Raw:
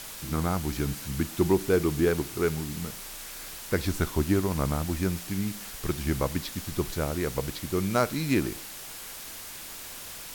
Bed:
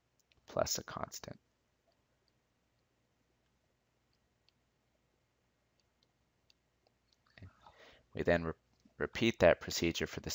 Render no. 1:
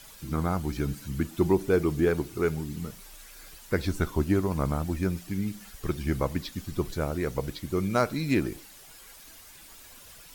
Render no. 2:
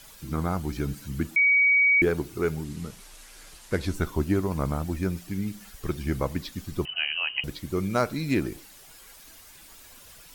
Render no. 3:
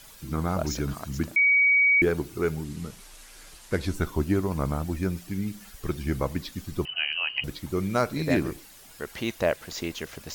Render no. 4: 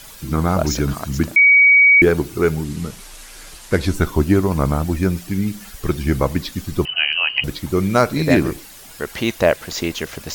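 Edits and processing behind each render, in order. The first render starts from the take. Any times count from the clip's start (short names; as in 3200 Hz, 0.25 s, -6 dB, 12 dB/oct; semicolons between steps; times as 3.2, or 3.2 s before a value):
denoiser 11 dB, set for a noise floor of -41 dBFS
1.36–2.02 bleep 2260 Hz -16.5 dBFS; 2.64–3.94 CVSD 64 kbps; 6.85–7.44 inverted band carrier 3000 Hz
add bed +1.5 dB
gain +9.5 dB; limiter -1 dBFS, peak gain reduction 1 dB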